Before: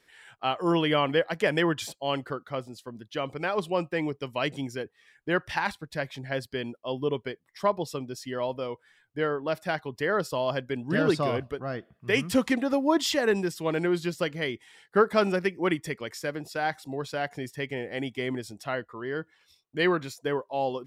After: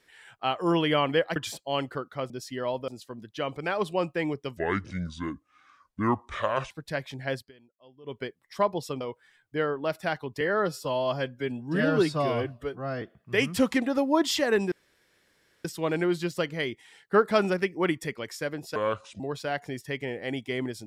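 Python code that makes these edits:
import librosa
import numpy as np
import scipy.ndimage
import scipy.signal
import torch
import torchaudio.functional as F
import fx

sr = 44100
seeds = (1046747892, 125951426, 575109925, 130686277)

y = fx.edit(x, sr, fx.cut(start_s=1.36, length_s=0.35),
    fx.speed_span(start_s=4.34, length_s=1.41, speed=0.66),
    fx.fade_down_up(start_s=6.4, length_s=0.84, db=-23.5, fade_s=0.16),
    fx.move(start_s=8.05, length_s=0.58, to_s=2.65),
    fx.stretch_span(start_s=10.03, length_s=1.74, factor=1.5),
    fx.insert_room_tone(at_s=13.47, length_s=0.93),
    fx.speed_span(start_s=16.58, length_s=0.31, speed=0.7), tone=tone)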